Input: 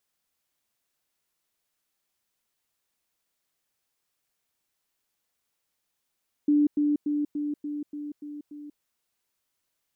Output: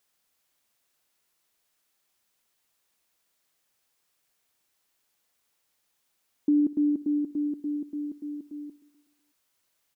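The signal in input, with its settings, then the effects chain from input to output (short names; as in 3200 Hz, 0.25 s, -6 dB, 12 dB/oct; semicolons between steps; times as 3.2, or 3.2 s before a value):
level ladder 294 Hz -17.5 dBFS, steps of -3 dB, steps 8, 0.19 s 0.10 s
low shelf 250 Hz -4 dB; in parallel at -2 dB: compressor, threshold -34 dBFS; on the sum: feedback echo 0.124 s, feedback 55%, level -17.5 dB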